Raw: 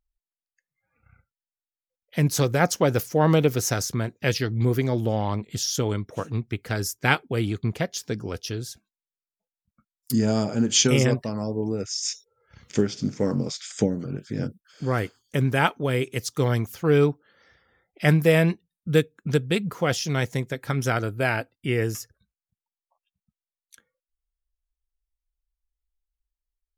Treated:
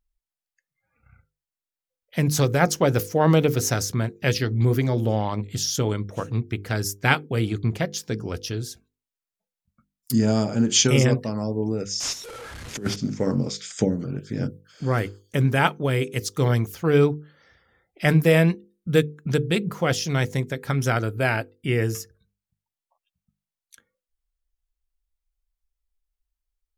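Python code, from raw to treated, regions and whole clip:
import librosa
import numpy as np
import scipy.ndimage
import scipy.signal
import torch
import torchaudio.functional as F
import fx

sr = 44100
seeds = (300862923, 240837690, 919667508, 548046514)

y = fx.chain(x, sr, fx.delta_mod(bps=64000, step_db=-36.5),
    fx.over_compress(threshold_db=-26.0, ratio=-0.5),
    fx.band_widen(depth_pct=40), at=(12.0, 12.96))
y = fx.low_shelf(y, sr, hz=150.0, db=3.5)
y = fx.hum_notches(y, sr, base_hz=50, count=10)
y = y * librosa.db_to_amplitude(1.0)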